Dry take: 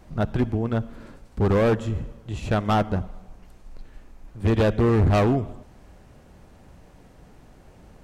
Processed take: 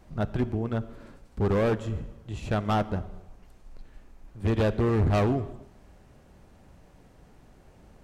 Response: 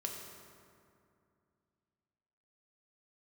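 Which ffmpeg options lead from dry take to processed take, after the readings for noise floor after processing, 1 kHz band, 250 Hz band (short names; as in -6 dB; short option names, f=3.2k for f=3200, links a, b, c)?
-56 dBFS, -4.5 dB, -4.5 dB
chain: -filter_complex "[0:a]asplit=2[a][b];[1:a]atrim=start_sample=2205,afade=t=out:st=0.34:d=0.01,atrim=end_sample=15435[c];[b][c]afir=irnorm=-1:irlink=0,volume=-12.5dB[d];[a][d]amix=inputs=2:normalize=0,volume=-6dB"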